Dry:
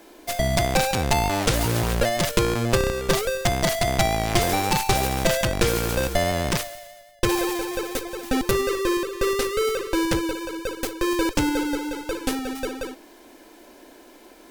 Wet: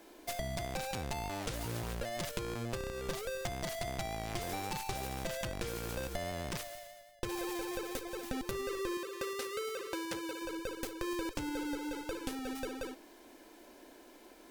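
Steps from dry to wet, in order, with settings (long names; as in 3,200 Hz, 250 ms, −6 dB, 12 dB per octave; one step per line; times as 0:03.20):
0:08.97–0:10.42: high-pass filter 380 Hz 6 dB per octave
downward compressor, threshold −27 dBFS, peak gain reduction 12.5 dB
level −8 dB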